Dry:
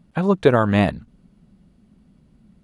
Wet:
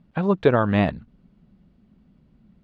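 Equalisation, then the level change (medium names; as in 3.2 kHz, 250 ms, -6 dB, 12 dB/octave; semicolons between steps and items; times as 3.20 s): low-pass 4 kHz 12 dB/octave; -2.5 dB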